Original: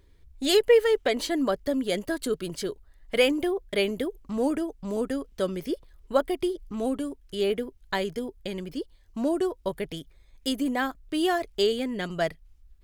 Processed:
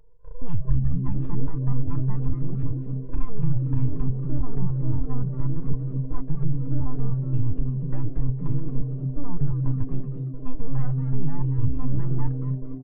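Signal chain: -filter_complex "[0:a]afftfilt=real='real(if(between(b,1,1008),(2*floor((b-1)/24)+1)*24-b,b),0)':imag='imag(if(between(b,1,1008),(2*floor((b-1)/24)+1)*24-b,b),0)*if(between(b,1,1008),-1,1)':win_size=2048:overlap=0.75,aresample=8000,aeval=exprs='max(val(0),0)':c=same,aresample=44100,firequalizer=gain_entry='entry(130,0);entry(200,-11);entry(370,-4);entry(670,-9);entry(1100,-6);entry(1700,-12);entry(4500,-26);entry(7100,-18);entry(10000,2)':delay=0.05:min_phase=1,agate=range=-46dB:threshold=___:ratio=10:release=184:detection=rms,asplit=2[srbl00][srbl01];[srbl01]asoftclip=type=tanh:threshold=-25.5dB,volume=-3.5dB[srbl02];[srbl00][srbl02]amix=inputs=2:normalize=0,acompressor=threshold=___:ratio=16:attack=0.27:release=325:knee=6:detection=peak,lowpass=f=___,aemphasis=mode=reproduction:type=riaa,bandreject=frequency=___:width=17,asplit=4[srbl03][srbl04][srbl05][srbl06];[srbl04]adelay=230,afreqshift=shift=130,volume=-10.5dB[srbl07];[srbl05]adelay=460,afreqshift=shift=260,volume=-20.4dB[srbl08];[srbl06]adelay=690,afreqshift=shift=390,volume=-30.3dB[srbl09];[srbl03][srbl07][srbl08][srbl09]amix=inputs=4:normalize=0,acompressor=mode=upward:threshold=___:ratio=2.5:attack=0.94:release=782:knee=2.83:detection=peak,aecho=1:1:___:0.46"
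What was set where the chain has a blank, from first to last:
-54dB, -31dB, 2900, 2200, -25dB, 6.7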